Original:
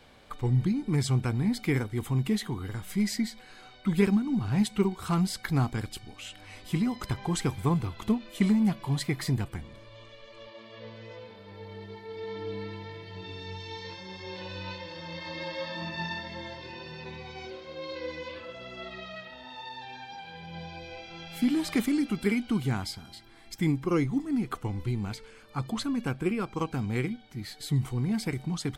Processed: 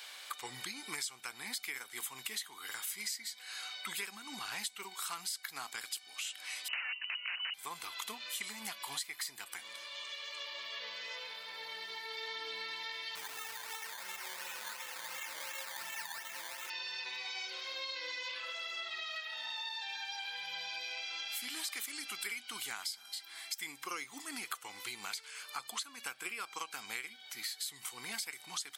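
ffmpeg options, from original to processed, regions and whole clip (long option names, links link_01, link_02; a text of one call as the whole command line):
ffmpeg -i in.wav -filter_complex "[0:a]asettb=1/sr,asplit=3[link_01][link_02][link_03];[link_01]atrim=end=6.684[link_04];[link_02]atrim=start=6.68:end=7.54,asetpts=PTS-STARTPTS,afade=type=in:duration=0.004:curve=qsin,afade=type=out:start_time=0.856:duration=0.004:curve=qsin,lowshelf=frequency=310:gain=9,aeval=exprs='(mod(13.3*val(0)+1,2)-1)/13.3':channel_layout=same,lowpass=frequency=2600:width_type=q:width=0.5098,lowpass=frequency=2600:width_type=q:width=0.6013,lowpass=frequency=2600:width_type=q:width=0.9,lowpass=frequency=2600:width_type=q:width=2.563,afreqshift=-3000[link_05];[link_03]atrim=start=7.536[link_06];[link_04][link_05]acrossfade=duration=0.004:curve1=hsin:curve2=qsin[link_07];[link_07][link_06]acrossfade=duration=0.004:curve1=qsin:curve2=hsin,asettb=1/sr,asplit=3[link_08][link_09][link_10];[link_08]atrim=end=13.154[link_11];[link_09]atrim=start=13.15:end=16.7,asetpts=PTS-STARTPTS,afade=type=in:duration=0.004:curve=qsin,afade=type=out:start_time=3.546:duration=0.004:curve=qsin,acrusher=samples=13:mix=1:aa=0.000001:lfo=1:lforange=7.8:lforate=2.8,bass=frequency=250:gain=6,treble=frequency=4000:gain=-6[link_12];[link_10]atrim=start=16.696[link_13];[link_11][link_12]acrossfade=duration=0.004:curve1=hsin:curve2=qsin[link_14];[link_14][link_13]acrossfade=duration=0.004:curve1=qsin:curve2=hsin,highpass=1300,highshelf=frequency=4100:gain=11.5,acompressor=threshold=-46dB:ratio=6,volume=7.5dB" out.wav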